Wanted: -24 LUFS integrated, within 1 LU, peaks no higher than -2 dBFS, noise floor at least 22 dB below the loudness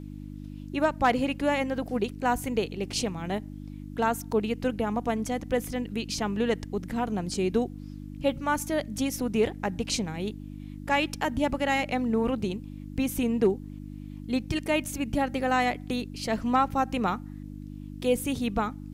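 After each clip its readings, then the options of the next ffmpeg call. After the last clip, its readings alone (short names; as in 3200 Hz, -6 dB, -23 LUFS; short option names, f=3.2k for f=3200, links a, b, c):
hum 50 Hz; harmonics up to 300 Hz; hum level -37 dBFS; loudness -28.5 LUFS; peak -12.0 dBFS; loudness target -24.0 LUFS
-> -af "bandreject=f=50:t=h:w=4,bandreject=f=100:t=h:w=4,bandreject=f=150:t=h:w=4,bandreject=f=200:t=h:w=4,bandreject=f=250:t=h:w=4,bandreject=f=300:t=h:w=4"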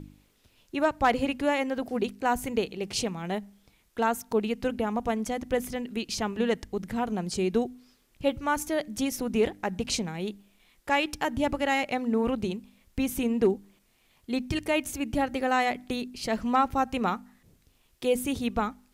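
hum none; loudness -29.0 LUFS; peak -12.5 dBFS; loudness target -24.0 LUFS
-> -af "volume=5dB"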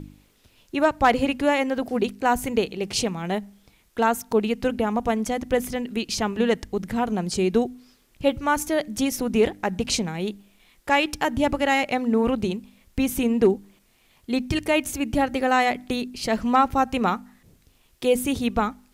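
loudness -24.0 LUFS; peak -7.5 dBFS; noise floor -61 dBFS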